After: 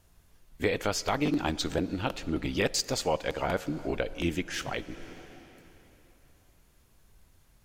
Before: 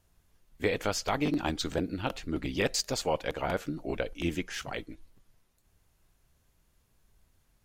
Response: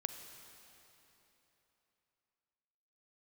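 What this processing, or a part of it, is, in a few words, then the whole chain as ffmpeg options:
ducked reverb: -filter_complex "[0:a]asplit=3[s0][s1][s2];[1:a]atrim=start_sample=2205[s3];[s1][s3]afir=irnorm=-1:irlink=0[s4];[s2]apad=whole_len=337177[s5];[s4][s5]sidechaincompress=threshold=0.0158:ratio=8:attack=6.3:release=455,volume=1.41[s6];[s0][s6]amix=inputs=2:normalize=0,volume=0.891"

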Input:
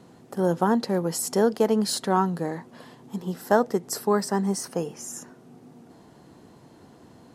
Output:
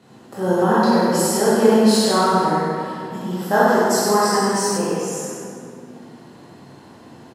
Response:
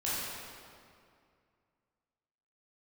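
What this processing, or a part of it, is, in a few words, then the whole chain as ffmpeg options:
PA in a hall: -filter_complex "[0:a]highpass=100,equalizer=f=2500:t=o:w=1.7:g=4,aecho=1:1:100:0.447[s0];[1:a]atrim=start_sample=2205[s1];[s0][s1]afir=irnorm=-1:irlink=0,asettb=1/sr,asplit=3[s2][s3][s4];[s2]atrim=end=3.684[s5];[s3]atrim=start=3.68:end=4.78,asetpts=PTS-STARTPTS,afade=t=in:d=0.004:c=qsin,afade=t=out:st=1.096:d=0.004:c=qsin,equalizer=f=5900:t=o:w=2.8:g=3.5[s6];[s4]atrim=start=4.776[s7];[s5][s6]acrossfade=d=0.004:c1=hsin:c2=qsin[s8];[s8][s7]acrossfade=d=0.004:c1=qsin:c2=hsin"

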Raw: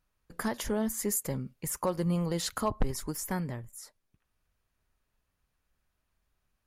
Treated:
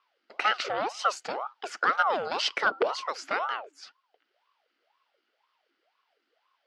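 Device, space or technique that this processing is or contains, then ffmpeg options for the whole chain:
voice changer toy: -af "aeval=exprs='val(0)*sin(2*PI*680*n/s+680*0.6/2*sin(2*PI*2*n/s))':c=same,highpass=550,equalizer=f=960:t=q:w=4:g=-5,equalizer=f=1400:t=q:w=4:g=8,equalizer=f=2000:t=q:w=4:g=3,equalizer=f=3000:t=q:w=4:g=8,equalizer=f=4700:t=q:w=4:g=7,lowpass=f=5000:w=0.5412,lowpass=f=5000:w=1.3066,volume=2.24"

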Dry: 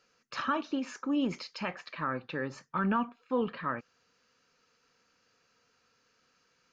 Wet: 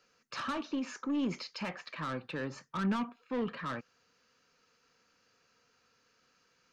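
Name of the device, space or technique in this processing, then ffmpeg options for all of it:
one-band saturation: -filter_complex "[0:a]acrossover=split=240|4600[s0][s1][s2];[s1]asoftclip=type=tanh:threshold=0.0224[s3];[s0][s3][s2]amix=inputs=3:normalize=0"

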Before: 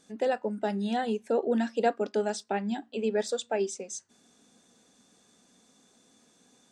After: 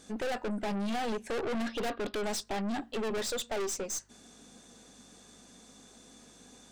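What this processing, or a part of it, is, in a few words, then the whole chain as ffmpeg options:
valve amplifier with mains hum: -filter_complex "[0:a]asettb=1/sr,asplit=3[s0][s1][s2];[s0]atrim=end=1.684[s3];[s1]atrim=start=1.68:end=2.24,asetpts=PTS-STARTPTS,afade=t=in:d=0.004:c=qsin,afade=t=out:st=0.556:d=0.004:c=qsin,highshelf=f=5300:t=q:w=3:g=-13.5[s4];[s2]atrim=start=2.236[s5];[s3][s4]acrossfade=d=0.004:c1=hsin:c2=qsin[s6];[s6][s5]acrossfade=d=0.004:c1=qsin:c2=hsin,aeval=exprs='(tanh(100*val(0)+0.4)-tanh(0.4))/100':c=same,aeval=exprs='val(0)+0.000141*(sin(2*PI*50*n/s)+sin(2*PI*2*50*n/s)/2+sin(2*PI*3*50*n/s)/3+sin(2*PI*4*50*n/s)/4+sin(2*PI*5*50*n/s)/5)':c=same,volume=2.66"

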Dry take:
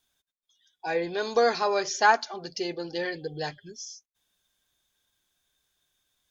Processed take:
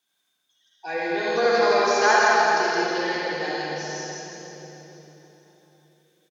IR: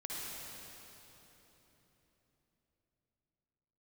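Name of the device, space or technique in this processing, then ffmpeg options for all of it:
PA in a hall: -filter_complex "[0:a]highpass=180,equalizer=f=2000:t=o:w=2:g=3.5,aecho=1:1:165:0.596[s0];[1:a]atrim=start_sample=2205[s1];[s0][s1]afir=irnorm=-1:irlink=0,volume=1.26"

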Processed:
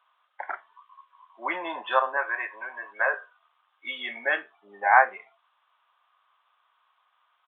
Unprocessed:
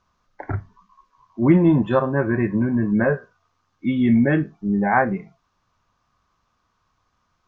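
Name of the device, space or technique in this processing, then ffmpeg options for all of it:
musical greeting card: -filter_complex "[0:a]aresample=8000,aresample=44100,highpass=f=720:w=0.5412,highpass=f=720:w=1.3066,equalizer=f=3200:t=o:w=0.35:g=5,asettb=1/sr,asplit=3[s0][s1][s2];[s0]atrim=end=2.174[s3];[s1]atrim=start=2.17:end=3.14,asetpts=PTS-STARTPTS,afade=t=in:d=0.004:c=qsin,afade=t=out:st=0.966:d=0.004:c=qsin,highpass=500[s4];[s2]atrim=start=3.136[s5];[s3][s4]acrossfade=d=0.004:c1=hsin:c2=qsin[s6];[s6][s5]acrossfade=d=0.004:c1=qsin:c2=hsin,volume=1.33"

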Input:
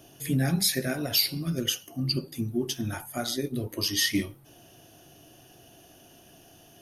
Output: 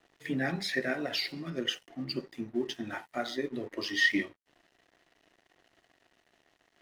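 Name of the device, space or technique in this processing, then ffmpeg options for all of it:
pocket radio on a weak battery: -af "highpass=290,lowpass=3000,aeval=exprs='sgn(val(0))*max(abs(val(0))-0.00178,0)':c=same,equalizer=f=1900:t=o:w=0.21:g=9"

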